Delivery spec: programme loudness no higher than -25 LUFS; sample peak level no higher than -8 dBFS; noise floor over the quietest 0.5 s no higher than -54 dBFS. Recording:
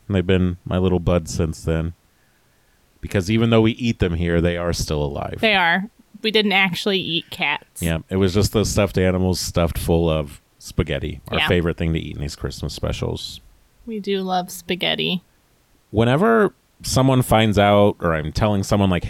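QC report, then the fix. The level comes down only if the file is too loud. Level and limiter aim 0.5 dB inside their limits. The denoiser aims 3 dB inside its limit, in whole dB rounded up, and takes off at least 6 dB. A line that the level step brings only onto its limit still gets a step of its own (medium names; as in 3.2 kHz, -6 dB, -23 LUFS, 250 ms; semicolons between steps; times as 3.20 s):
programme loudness -20.0 LUFS: fail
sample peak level -5.0 dBFS: fail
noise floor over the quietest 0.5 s -59 dBFS: pass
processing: trim -5.5 dB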